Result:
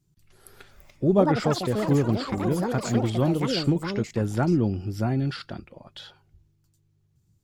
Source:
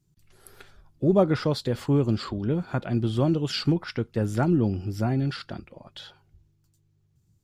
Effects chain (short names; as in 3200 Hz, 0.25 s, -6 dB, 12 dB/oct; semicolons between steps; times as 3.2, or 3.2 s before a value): echoes that change speed 0.492 s, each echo +7 st, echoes 3, each echo -6 dB